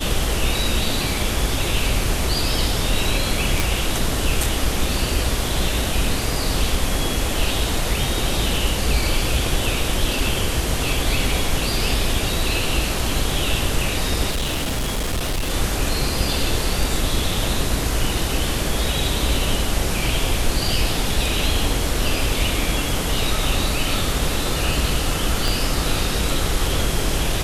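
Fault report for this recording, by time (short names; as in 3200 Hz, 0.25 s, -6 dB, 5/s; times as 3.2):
3.6 pop
14.3–15.51 clipped -19 dBFS
25.48 pop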